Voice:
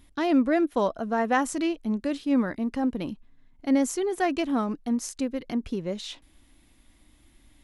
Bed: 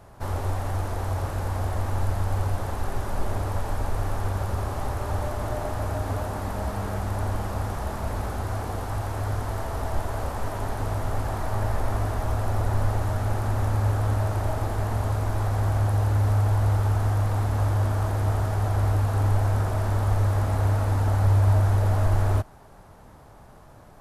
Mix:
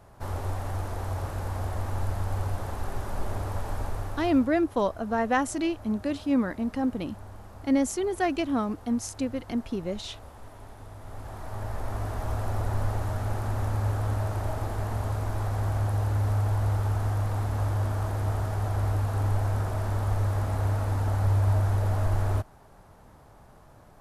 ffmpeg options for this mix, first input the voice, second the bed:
ffmpeg -i stem1.wav -i stem2.wav -filter_complex "[0:a]adelay=4000,volume=-1dB[link_01];[1:a]volume=9dB,afade=type=out:start_time=3.81:duration=0.73:silence=0.223872,afade=type=in:start_time=10.96:duration=1.38:silence=0.223872[link_02];[link_01][link_02]amix=inputs=2:normalize=0" out.wav

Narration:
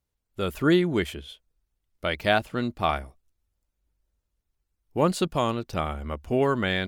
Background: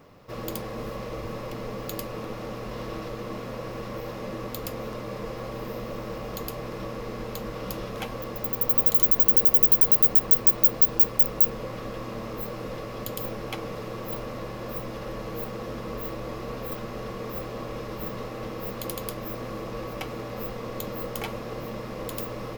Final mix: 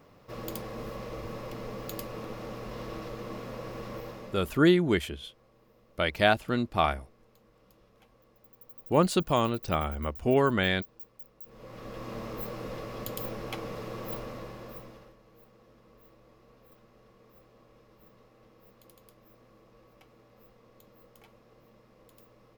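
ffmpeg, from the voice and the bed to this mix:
ffmpeg -i stem1.wav -i stem2.wav -filter_complex "[0:a]adelay=3950,volume=-0.5dB[link_01];[1:a]volume=20.5dB,afade=type=out:start_time=3.95:duration=0.66:silence=0.0630957,afade=type=in:start_time=11.44:duration=0.7:silence=0.0562341,afade=type=out:start_time=14.1:duration=1.06:silence=0.0891251[link_02];[link_01][link_02]amix=inputs=2:normalize=0" out.wav

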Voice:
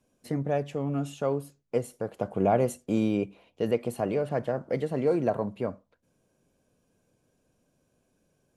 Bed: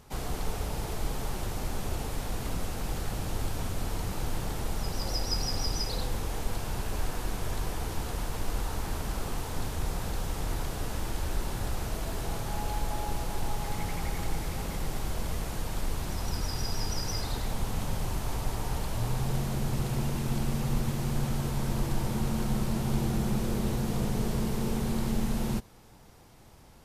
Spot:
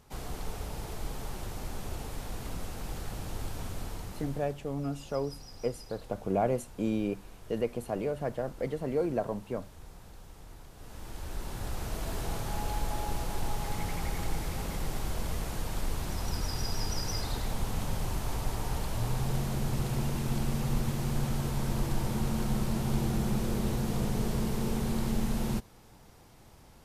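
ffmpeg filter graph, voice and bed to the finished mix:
ffmpeg -i stem1.wav -i stem2.wav -filter_complex "[0:a]adelay=3900,volume=-4.5dB[link_01];[1:a]volume=11.5dB,afade=type=out:start_time=3.76:duration=0.84:silence=0.237137,afade=type=in:start_time=10.74:duration=1.4:silence=0.149624[link_02];[link_01][link_02]amix=inputs=2:normalize=0" out.wav

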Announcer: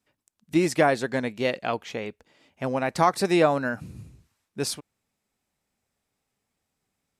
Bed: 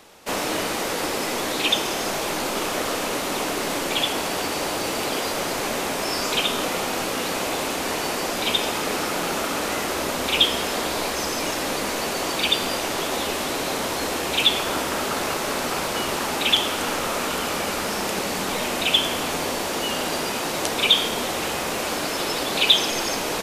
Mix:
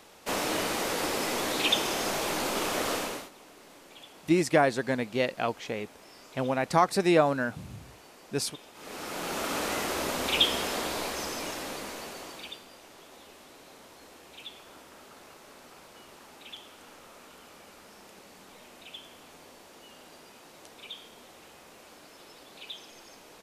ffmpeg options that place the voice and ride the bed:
ffmpeg -i stem1.wav -i stem2.wav -filter_complex "[0:a]adelay=3750,volume=-2dB[link_01];[1:a]volume=17dB,afade=type=out:start_time=2.94:duration=0.36:silence=0.0749894,afade=type=in:start_time=8.74:duration=0.81:silence=0.0841395,afade=type=out:start_time=10.52:duration=2.12:silence=0.0944061[link_02];[link_01][link_02]amix=inputs=2:normalize=0" out.wav

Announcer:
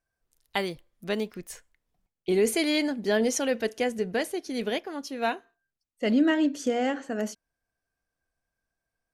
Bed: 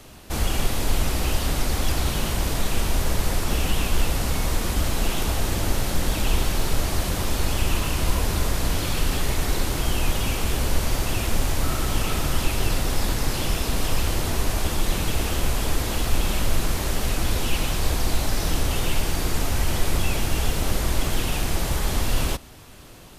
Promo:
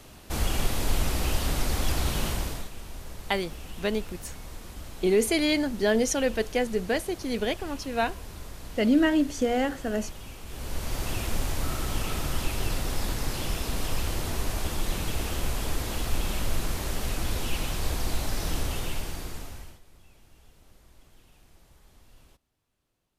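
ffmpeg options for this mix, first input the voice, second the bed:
ffmpeg -i stem1.wav -i stem2.wav -filter_complex "[0:a]adelay=2750,volume=1dB[link_01];[1:a]volume=8.5dB,afade=type=out:start_time=2.27:duration=0.43:silence=0.188365,afade=type=in:start_time=10.46:duration=0.62:silence=0.251189,afade=type=out:start_time=18.6:duration=1.2:silence=0.0421697[link_02];[link_01][link_02]amix=inputs=2:normalize=0" out.wav

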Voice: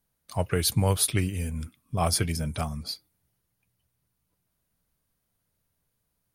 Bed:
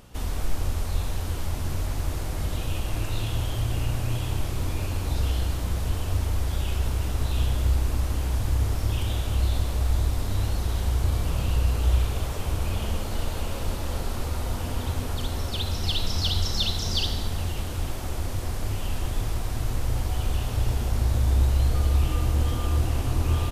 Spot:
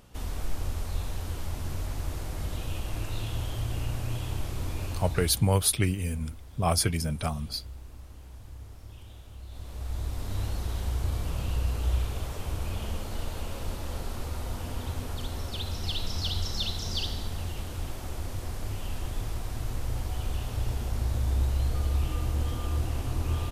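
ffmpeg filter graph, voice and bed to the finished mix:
ffmpeg -i stem1.wav -i stem2.wav -filter_complex "[0:a]adelay=4650,volume=0dB[link_01];[1:a]volume=10dB,afade=type=out:start_time=4.91:duration=0.58:silence=0.16788,afade=type=in:start_time=9.47:duration=0.92:silence=0.177828[link_02];[link_01][link_02]amix=inputs=2:normalize=0" out.wav

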